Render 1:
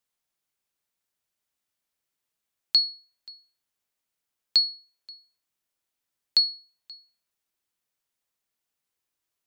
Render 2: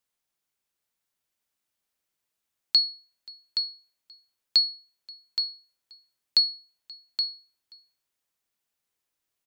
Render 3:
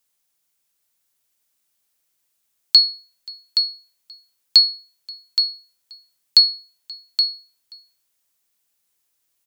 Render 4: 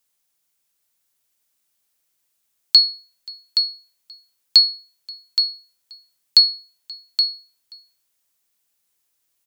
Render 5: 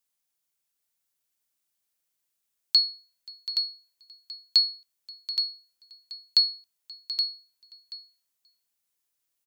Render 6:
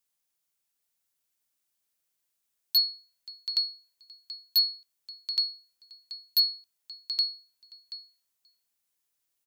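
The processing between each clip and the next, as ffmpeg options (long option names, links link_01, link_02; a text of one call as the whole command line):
ffmpeg -i in.wav -af "aecho=1:1:822:0.447" out.wav
ffmpeg -i in.wav -af "highshelf=frequency=4300:gain=9.5,volume=4dB" out.wav
ffmpeg -i in.wav -af anull out.wav
ffmpeg -i in.wav -af "aecho=1:1:731:0.2,volume=-8.5dB" out.wav
ffmpeg -i in.wav -af "aeval=exprs='0.158*(abs(mod(val(0)/0.158+3,4)-2)-1)':channel_layout=same" out.wav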